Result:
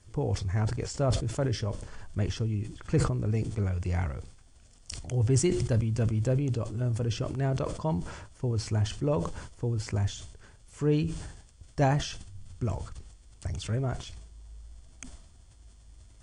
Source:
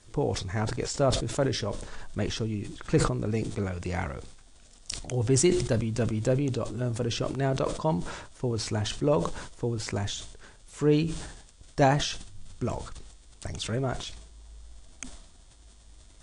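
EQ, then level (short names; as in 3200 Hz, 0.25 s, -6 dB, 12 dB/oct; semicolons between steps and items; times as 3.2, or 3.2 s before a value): bell 85 Hz +11 dB 1.5 oct; notch 3800 Hz, Q 7.6; -5.0 dB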